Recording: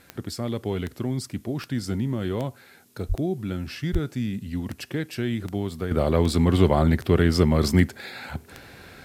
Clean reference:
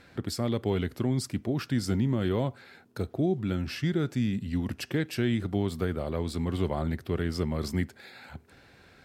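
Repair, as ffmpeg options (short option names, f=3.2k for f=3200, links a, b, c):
-filter_complex "[0:a]adeclick=t=4,asplit=3[a][b][c];[a]afade=t=out:st=3.08:d=0.02[d];[b]highpass=f=140:w=0.5412,highpass=f=140:w=1.3066,afade=t=in:st=3.08:d=0.02,afade=t=out:st=3.2:d=0.02[e];[c]afade=t=in:st=3.2:d=0.02[f];[d][e][f]amix=inputs=3:normalize=0,asplit=3[g][h][i];[g]afade=t=out:st=3.92:d=0.02[j];[h]highpass=f=140:w=0.5412,highpass=f=140:w=1.3066,afade=t=in:st=3.92:d=0.02,afade=t=out:st=4.04:d=0.02[k];[i]afade=t=in:st=4.04:d=0.02[l];[j][k][l]amix=inputs=3:normalize=0,agate=range=-21dB:threshold=-41dB,asetnsamples=n=441:p=0,asendcmd='5.91 volume volume -10.5dB',volume=0dB"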